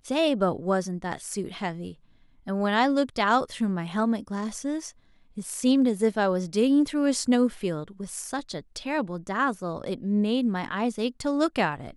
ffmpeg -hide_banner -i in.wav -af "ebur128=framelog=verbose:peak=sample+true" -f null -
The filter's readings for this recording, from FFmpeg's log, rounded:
Integrated loudness:
  I:         -26.4 LUFS
  Threshold: -36.7 LUFS
Loudness range:
  LRA:         3.7 LU
  Threshold: -46.6 LUFS
  LRA low:   -28.5 LUFS
  LRA high:  -24.8 LUFS
Sample peak:
  Peak:      -10.1 dBFS
True peak:
  Peak:      -10.0 dBFS